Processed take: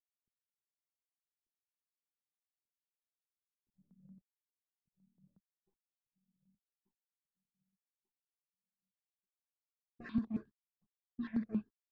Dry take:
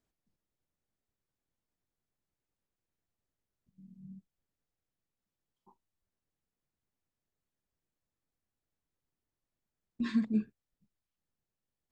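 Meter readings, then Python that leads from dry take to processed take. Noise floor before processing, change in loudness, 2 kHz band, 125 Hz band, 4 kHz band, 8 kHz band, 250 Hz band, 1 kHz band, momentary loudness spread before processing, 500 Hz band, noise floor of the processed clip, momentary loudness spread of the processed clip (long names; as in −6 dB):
below −85 dBFS, −6.5 dB, −5.0 dB, −2.5 dB, below −10 dB, can't be measured, −4.0 dB, −3.0 dB, 21 LU, −2.5 dB, below −85 dBFS, 14 LU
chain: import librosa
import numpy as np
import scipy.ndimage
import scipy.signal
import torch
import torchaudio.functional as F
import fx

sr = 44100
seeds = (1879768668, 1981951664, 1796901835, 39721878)

p1 = fx.law_mismatch(x, sr, coded='A')
p2 = fx.high_shelf(p1, sr, hz=4400.0, db=-8.5)
p3 = p2 + fx.echo_feedback(p2, sr, ms=1188, feedback_pct=31, wet_db=-6.0, dry=0)
p4 = fx.env_lowpass(p3, sr, base_hz=390.0, full_db=-34.0)
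p5 = fx.air_absorb(p4, sr, metres=120.0)
p6 = fx.rider(p5, sr, range_db=10, speed_s=2.0)
p7 = fx.phaser_held(p6, sr, hz=11.0, low_hz=590.0, high_hz=3000.0)
y = p7 * librosa.db_to_amplitude(3.5)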